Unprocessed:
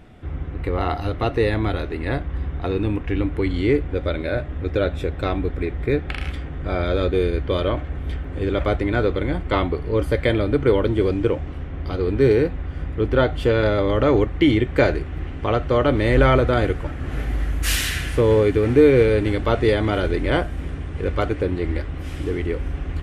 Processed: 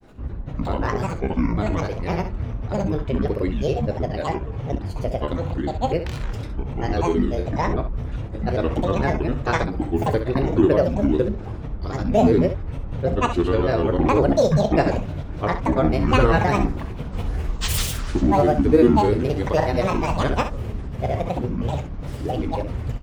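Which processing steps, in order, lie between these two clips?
drawn EQ curve 1,000 Hz 0 dB, 2,800 Hz −8 dB, 4,900 Hz +3 dB, 8,900 Hz 0 dB
granular cloud, pitch spread up and down by 12 semitones
ambience of single reflections 29 ms −13.5 dB, 65 ms −10 dB

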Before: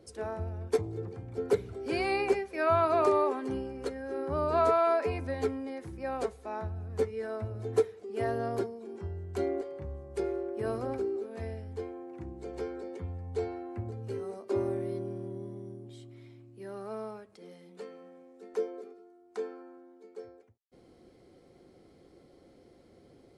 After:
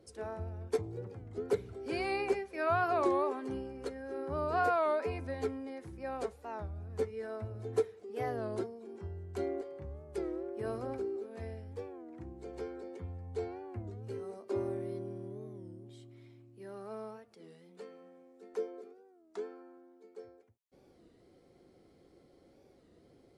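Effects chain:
wow of a warped record 33 1/3 rpm, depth 160 cents
level −4.5 dB

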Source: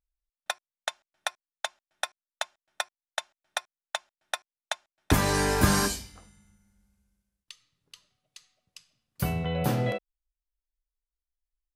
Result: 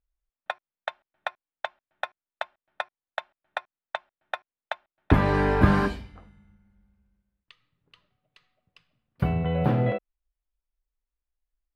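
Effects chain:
high-frequency loss of the air 490 metres
level +4.5 dB

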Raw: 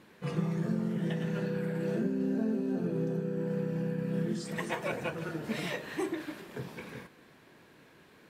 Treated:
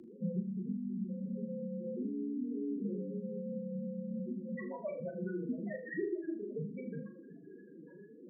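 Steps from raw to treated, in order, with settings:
downward compressor 16 to 1, threshold −43 dBFS, peak gain reduction 18.5 dB
spectral peaks only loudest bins 4
frequency shifter +25 Hz
on a send: flutter between parallel walls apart 6.7 metres, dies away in 0.36 s
on the sum: level +11 dB

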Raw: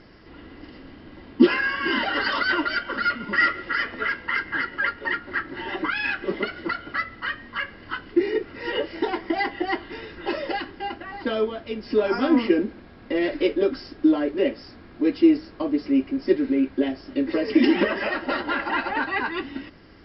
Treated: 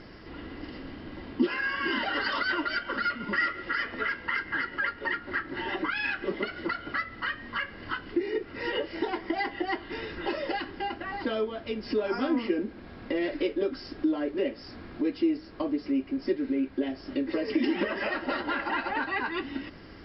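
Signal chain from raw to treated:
downward compressor 2 to 1, threshold −35 dBFS, peak gain reduction 14 dB
level +2.5 dB

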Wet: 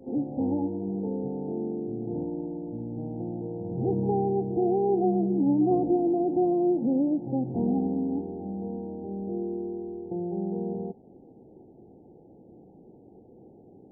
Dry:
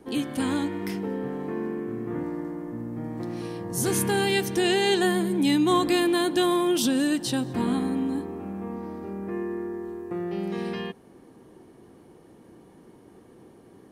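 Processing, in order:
Chebyshev low-pass filter 860 Hz, order 8
echo ahead of the sound 62 ms −14.5 dB

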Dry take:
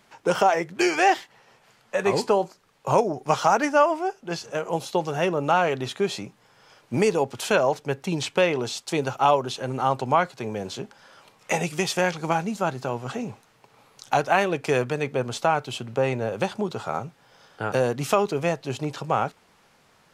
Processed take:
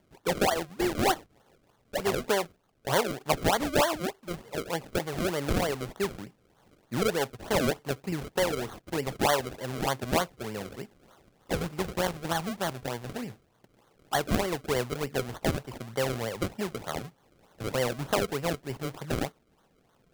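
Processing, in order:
low-pass filter 3,000 Hz 6 dB per octave
sample-and-hold swept by an LFO 34×, swing 100% 3.3 Hz
level −5.5 dB

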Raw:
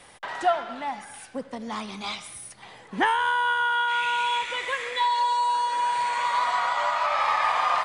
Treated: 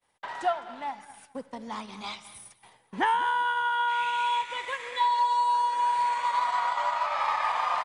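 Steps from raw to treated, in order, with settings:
downward expander −39 dBFS
parametric band 930 Hz +6 dB 0.21 octaves
repeating echo 209 ms, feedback 29%, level −16 dB
transient designer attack +1 dB, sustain −4 dB
level −5.5 dB

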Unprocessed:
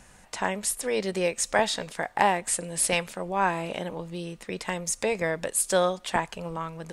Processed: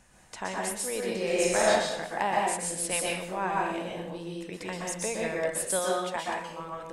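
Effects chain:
0:05.79–0:06.60: low-shelf EQ 240 Hz −11.5 dB
dense smooth reverb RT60 0.64 s, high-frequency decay 0.9×, pre-delay 110 ms, DRR −2.5 dB
0:01.23–0:01.70: thrown reverb, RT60 1 s, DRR −3.5 dB
level −7.5 dB

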